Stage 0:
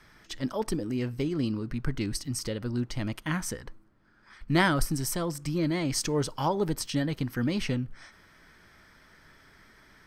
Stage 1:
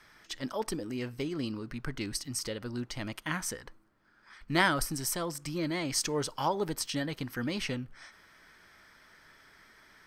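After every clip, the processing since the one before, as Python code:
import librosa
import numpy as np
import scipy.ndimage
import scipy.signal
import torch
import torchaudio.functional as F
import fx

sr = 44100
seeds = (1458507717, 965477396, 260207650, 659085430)

y = fx.low_shelf(x, sr, hz=330.0, db=-9.5)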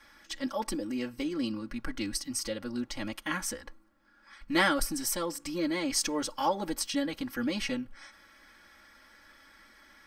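y = x + 0.97 * np.pad(x, (int(3.6 * sr / 1000.0), 0))[:len(x)]
y = y * librosa.db_to_amplitude(-1.5)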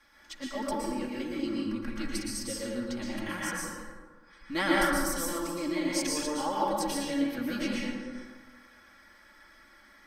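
y = fx.rev_plate(x, sr, seeds[0], rt60_s=1.5, hf_ratio=0.45, predelay_ms=105, drr_db=-5.0)
y = y * librosa.db_to_amplitude(-5.5)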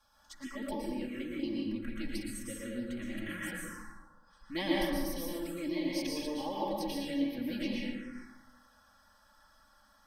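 y = fx.env_phaser(x, sr, low_hz=340.0, high_hz=1400.0, full_db=-28.0)
y = y * librosa.db_to_amplitude(-2.5)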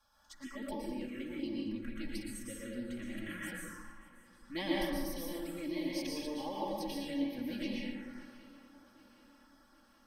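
y = fx.echo_swing(x, sr, ms=773, ratio=3, feedback_pct=48, wet_db=-21.0)
y = y * librosa.db_to_amplitude(-3.0)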